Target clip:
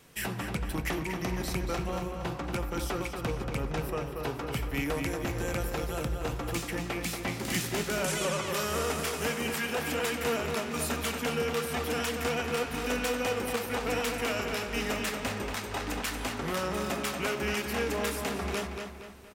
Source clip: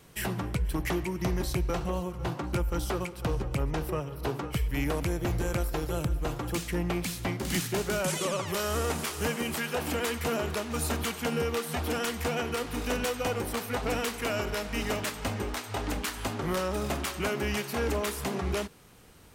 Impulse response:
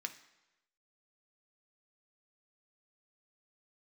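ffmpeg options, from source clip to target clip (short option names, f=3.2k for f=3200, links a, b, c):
-filter_complex "[0:a]asplit=2[a][b];[b]adelay=233,lowpass=f=4.6k:p=1,volume=-5dB,asplit=2[c][d];[d]adelay=233,lowpass=f=4.6k:p=1,volume=0.44,asplit=2[e][f];[f]adelay=233,lowpass=f=4.6k:p=1,volume=0.44,asplit=2[g][h];[h]adelay=233,lowpass=f=4.6k:p=1,volume=0.44,asplit=2[i][j];[j]adelay=233,lowpass=f=4.6k:p=1,volume=0.44[k];[a][c][e][g][i][k]amix=inputs=6:normalize=0,asplit=2[l][m];[1:a]atrim=start_sample=2205[n];[m][n]afir=irnorm=-1:irlink=0,volume=2.5dB[o];[l][o]amix=inputs=2:normalize=0,volume=-6.5dB"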